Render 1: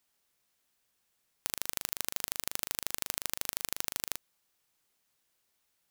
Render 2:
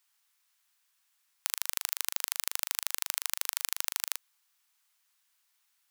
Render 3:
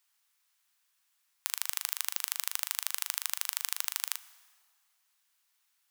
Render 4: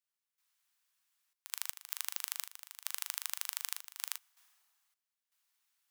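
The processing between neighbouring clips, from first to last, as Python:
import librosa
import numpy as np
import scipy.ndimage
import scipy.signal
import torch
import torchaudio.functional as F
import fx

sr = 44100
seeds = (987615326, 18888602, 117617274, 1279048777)

y1 = scipy.signal.sosfilt(scipy.signal.butter(4, 920.0, 'highpass', fs=sr, output='sos'), x)
y1 = y1 * librosa.db_to_amplitude(3.0)
y2 = fx.rev_plate(y1, sr, seeds[0], rt60_s=1.9, hf_ratio=0.8, predelay_ms=0, drr_db=16.0)
y2 = y2 * librosa.db_to_amplitude(-1.0)
y3 = fx.step_gate(y2, sr, bpm=79, pattern='..xxxxx.x.xxx', floor_db=-12.0, edge_ms=4.5)
y3 = y3 * librosa.db_to_amplitude(-5.0)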